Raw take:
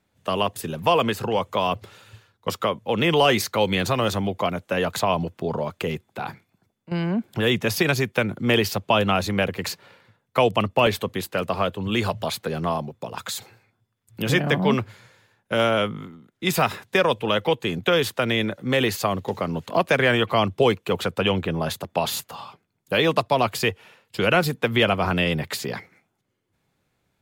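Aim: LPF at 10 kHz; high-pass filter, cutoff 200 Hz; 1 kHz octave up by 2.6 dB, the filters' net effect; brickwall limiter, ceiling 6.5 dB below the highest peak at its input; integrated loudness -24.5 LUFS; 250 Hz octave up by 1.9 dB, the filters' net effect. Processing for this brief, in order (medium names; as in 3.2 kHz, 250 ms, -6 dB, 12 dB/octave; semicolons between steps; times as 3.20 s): high-pass 200 Hz; low-pass 10 kHz; peaking EQ 250 Hz +5 dB; peaking EQ 1 kHz +3 dB; trim -0.5 dB; peak limiter -11 dBFS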